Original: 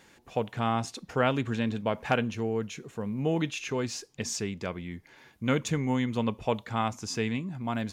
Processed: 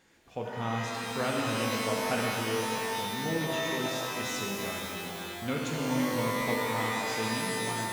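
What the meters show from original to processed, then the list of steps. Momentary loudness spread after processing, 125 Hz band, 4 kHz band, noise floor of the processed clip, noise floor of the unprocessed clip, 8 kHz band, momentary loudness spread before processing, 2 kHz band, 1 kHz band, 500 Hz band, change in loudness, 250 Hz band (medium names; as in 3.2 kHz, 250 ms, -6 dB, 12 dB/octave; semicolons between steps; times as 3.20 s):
6 LU, -4.5 dB, +4.5 dB, -40 dBFS, -60 dBFS, +2.5 dB, 8 LU, +3.5 dB, +0.5 dB, -1.0 dB, -0.5 dB, -3.0 dB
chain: pitch-shifted reverb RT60 3.1 s, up +12 st, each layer -2 dB, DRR -2 dB; trim -8 dB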